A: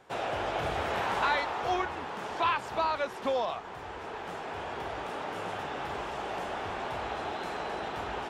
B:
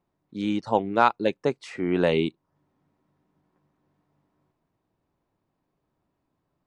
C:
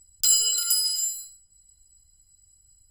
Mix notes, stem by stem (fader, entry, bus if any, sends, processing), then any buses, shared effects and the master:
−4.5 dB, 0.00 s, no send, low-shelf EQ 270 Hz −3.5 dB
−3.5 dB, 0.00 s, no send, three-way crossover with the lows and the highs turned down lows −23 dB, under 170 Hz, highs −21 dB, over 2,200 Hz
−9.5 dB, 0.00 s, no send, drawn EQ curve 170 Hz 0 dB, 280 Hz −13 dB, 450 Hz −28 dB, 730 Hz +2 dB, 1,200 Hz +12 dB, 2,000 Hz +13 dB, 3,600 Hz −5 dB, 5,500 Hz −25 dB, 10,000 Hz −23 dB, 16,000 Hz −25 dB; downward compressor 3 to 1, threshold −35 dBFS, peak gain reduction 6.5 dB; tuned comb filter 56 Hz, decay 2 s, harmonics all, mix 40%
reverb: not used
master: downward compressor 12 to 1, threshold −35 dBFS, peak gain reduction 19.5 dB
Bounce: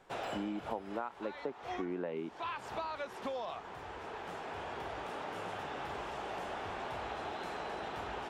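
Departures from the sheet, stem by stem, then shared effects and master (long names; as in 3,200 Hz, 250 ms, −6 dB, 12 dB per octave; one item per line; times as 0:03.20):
stem A: missing low-shelf EQ 270 Hz −3.5 dB
stem B −3.5 dB → +2.5 dB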